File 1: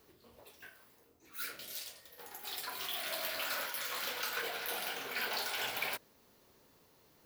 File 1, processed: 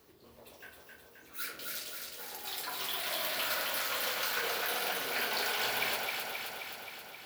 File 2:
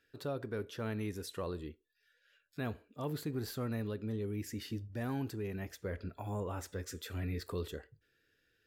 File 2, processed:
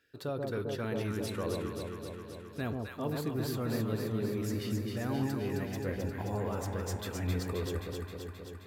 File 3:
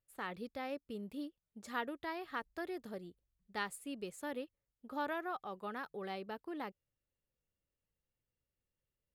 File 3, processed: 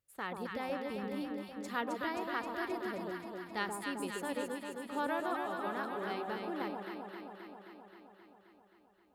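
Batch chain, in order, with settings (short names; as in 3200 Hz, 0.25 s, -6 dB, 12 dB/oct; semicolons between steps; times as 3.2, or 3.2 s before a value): HPF 44 Hz; on a send: echo with dull and thin repeats by turns 0.132 s, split 1000 Hz, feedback 83%, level -2 dB; on the sum: gain +2 dB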